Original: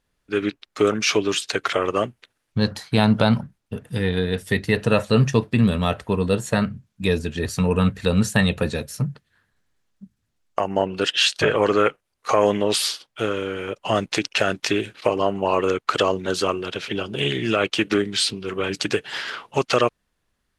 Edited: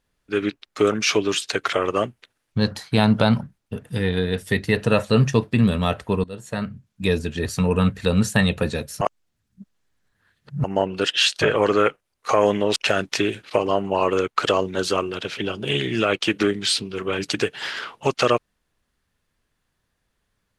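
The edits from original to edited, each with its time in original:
0:06.24–0:07.04: fade in, from −21 dB
0:09.01–0:10.64: reverse
0:12.76–0:14.27: remove

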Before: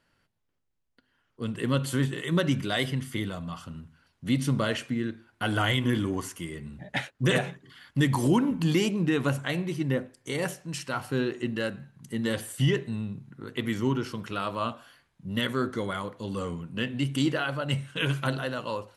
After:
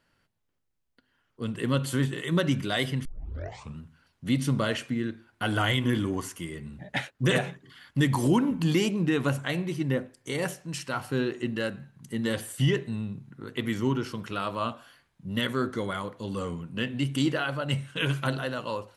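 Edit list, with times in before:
0:03.05: tape start 0.73 s

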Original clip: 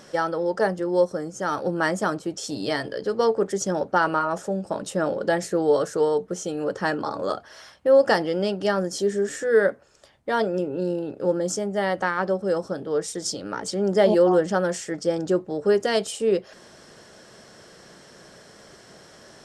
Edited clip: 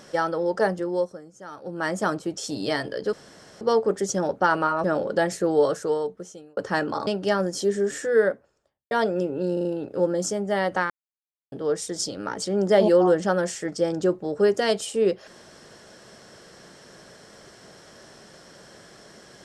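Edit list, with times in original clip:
0:00.75–0:02.06: duck −14 dB, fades 0.46 s
0:03.13: splice in room tone 0.48 s
0:04.36–0:04.95: remove
0:05.74–0:06.68: fade out
0:07.18–0:08.45: remove
0:09.39–0:10.29: fade out and dull
0:10.91: stutter 0.04 s, 4 plays
0:12.16–0:12.78: silence

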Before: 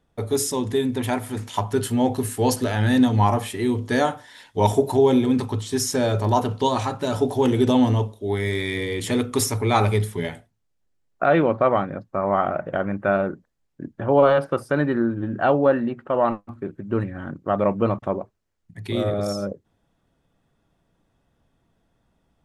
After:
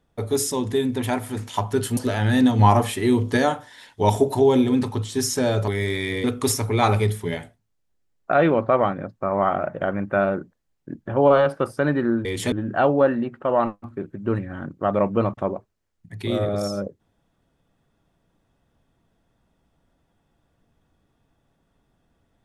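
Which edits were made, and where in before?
0:01.97–0:02.54: remove
0:03.16–0:03.94: clip gain +3.5 dB
0:06.25–0:08.33: remove
0:08.89–0:09.16: move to 0:15.17

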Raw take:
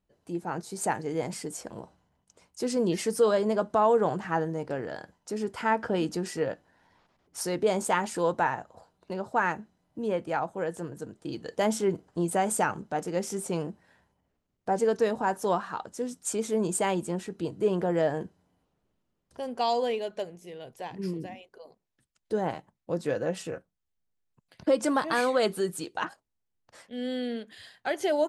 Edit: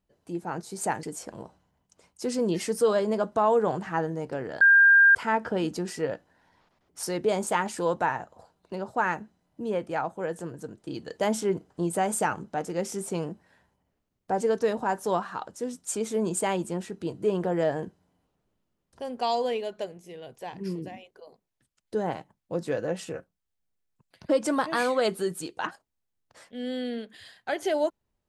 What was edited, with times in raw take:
0:01.03–0:01.41: remove
0:04.99–0:05.53: beep over 1,600 Hz −13 dBFS

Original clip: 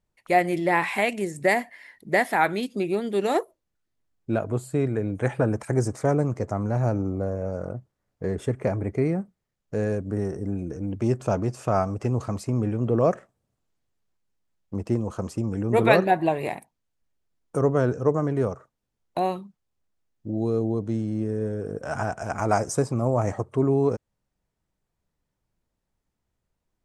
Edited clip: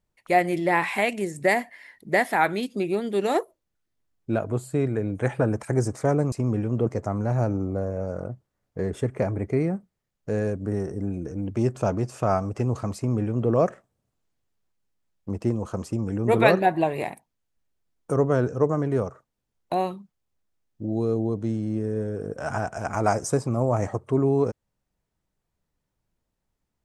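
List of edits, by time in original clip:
0:12.41–0:12.96: duplicate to 0:06.32

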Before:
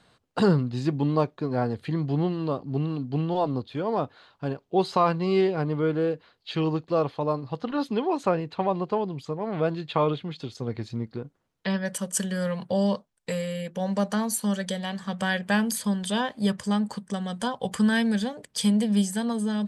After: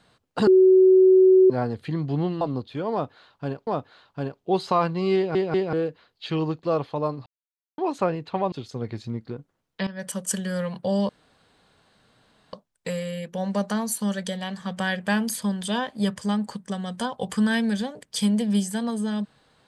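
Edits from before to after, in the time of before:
0:00.47–0:01.50: beep over 375 Hz −11 dBFS
0:02.41–0:03.41: remove
0:03.92–0:04.67: repeat, 2 plays
0:05.41: stutter in place 0.19 s, 3 plays
0:07.51–0:08.03: silence
0:08.77–0:10.38: remove
0:11.73–0:11.98: fade in, from −14.5 dB
0:12.95: splice in room tone 1.44 s

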